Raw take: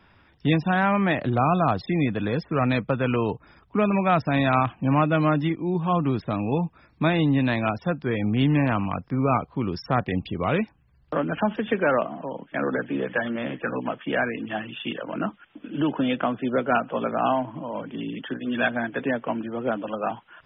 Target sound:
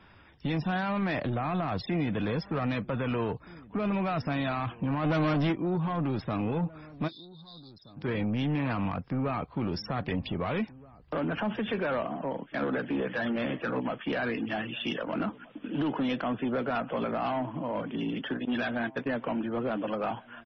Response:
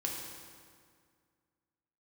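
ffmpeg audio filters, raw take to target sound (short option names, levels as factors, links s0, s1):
-filter_complex "[0:a]asettb=1/sr,asplit=3[s0][s1][s2];[s0]atrim=end=18.454[s3];[s1]atrim=start=18.45:end=19.08,asetpts=PTS-STARTPTS,afade=t=in:d=0.004:c=qsin,afade=t=out:st=0.626:d=0.004:c=qsin,agate=range=0.0501:threshold=0.0398:ratio=16:detection=peak[s4];[s2]atrim=start=19.076[s5];[s3][s4]acrossfade=d=0.004:c1=hsin:c2=qsin[s6];[s6][s5]acrossfade=d=0.004:c1=qsin:c2=hsin,acontrast=28,alimiter=limit=0.178:level=0:latency=1:release=38,asplit=3[s7][s8][s9];[s7]afade=t=out:st=5.03:d=0.02[s10];[s8]acontrast=82,afade=t=in:st=5.03:d=0.02,afade=t=out:st=5.51:d=0.02[s11];[s9]afade=t=in:st=5.51:d=0.02[s12];[s10][s11][s12]amix=inputs=3:normalize=0,asoftclip=type=tanh:threshold=0.112,asplit=3[s13][s14][s15];[s13]afade=t=out:st=7.07:d=0.02[s16];[s14]asuperpass=centerf=4300:order=12:qfactor=2.7,afade=t=in:st=7.07:d=0.02,afade=t=out:st=7.96:d=0.02[s17];[s15]afade=t=in:st=7.96:d=0.02[s18];[s16][s17][s18]amix=inputs=3:normalize=0,asplit=2[s19][s20];[s20]adelay=1574,volume=0.0891,highshelf=f=4000:g=-35.4[s21];[s19][s21]amix=inputs=2:normalize=0,volume=0.631" -ar 24000 -c:a libmp3lame -b:a 24k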